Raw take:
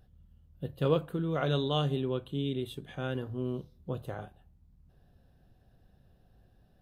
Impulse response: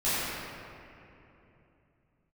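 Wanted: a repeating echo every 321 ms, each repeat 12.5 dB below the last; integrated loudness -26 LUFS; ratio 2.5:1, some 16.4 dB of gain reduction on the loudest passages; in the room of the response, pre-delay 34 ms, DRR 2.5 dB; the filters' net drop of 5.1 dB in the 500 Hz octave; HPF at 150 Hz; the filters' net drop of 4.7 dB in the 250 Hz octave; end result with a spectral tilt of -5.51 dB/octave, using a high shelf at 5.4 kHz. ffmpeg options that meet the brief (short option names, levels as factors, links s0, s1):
-filter_complex "[0:a]highpass=150,equalizer=f=250:t=o:g=-3.5,equalizer=f=500:t=o:g=-5,highshelf=f=5400:g=-8.5,acompressor=threshold=0.00282:ratio=2.5,aecho=1:1:321|642|963:0.237|0.0569|0.0137,asplit=2[s0][s1];[1:a]atrim=start_sample=2205,adelay=34[s2];[s1][s2]afir=irnorm=-1:irlink=0,volume=0.168[s3];[s0][s3]amix=inputs=2:normalize=0,volume=13.3"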